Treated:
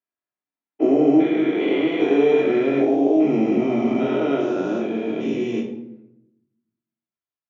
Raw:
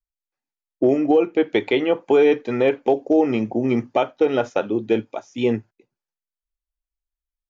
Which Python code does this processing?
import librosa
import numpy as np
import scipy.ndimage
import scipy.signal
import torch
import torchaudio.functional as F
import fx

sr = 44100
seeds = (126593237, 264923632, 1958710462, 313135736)

y = fx.spec_steps(x, sr, hold_ms=400)
y = scipy.signal.sosfilt(scipy.signal.butter(4, 150.0, 'highpass', fs=sr, output='sos'), y)
y = fx.doubler(y, sr, ms=22.0, db=-4.0)
y = fx.env_lowpass(y, sr, base_hz=2400.0, full_db=-20.0)
y = fx.room_shoebox(y, sr, seeds[0], volume_m3=2300.0, walls='furnished', distance_m=3.0)